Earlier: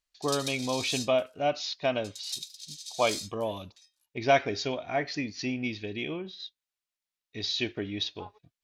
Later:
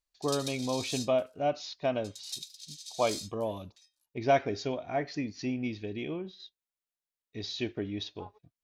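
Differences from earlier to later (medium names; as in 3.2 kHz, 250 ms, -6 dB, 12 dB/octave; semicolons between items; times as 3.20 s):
speech: add peaking EQ 3.3 kHz -8 dB 2.9 oct; background -3.0 dB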